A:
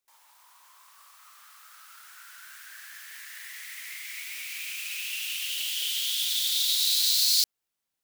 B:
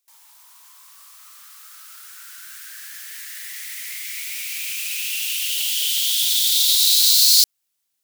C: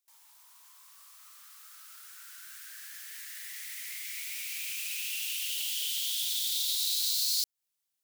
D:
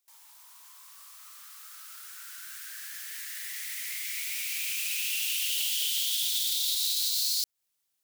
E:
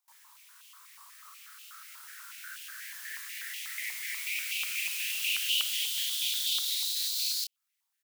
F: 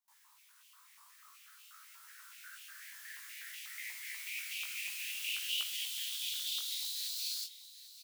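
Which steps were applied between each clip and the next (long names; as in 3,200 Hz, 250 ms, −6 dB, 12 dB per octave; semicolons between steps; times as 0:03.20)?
high-shelf EQ 2,500 Hz +12 dB; level −1 dB
downward compressor 2 to 1, threshold −23 dBFS, peak gain reduction 7.5 dB; level −8.5 dB
brickwall limiter −23 dBFS, peak gain reduction 5.5 dB; level +4.5 dB
double-tracking delay 29 ms −6.5 dB; high-pass on a step sequencer 8.2 Hz 930–2,800 Hz; level −5 dB
chorus effect 0.51 Hz, delay 15.5 ms, depth 5.8 ms; single-tap delay 787 ms −15 dB; level −4.5 dB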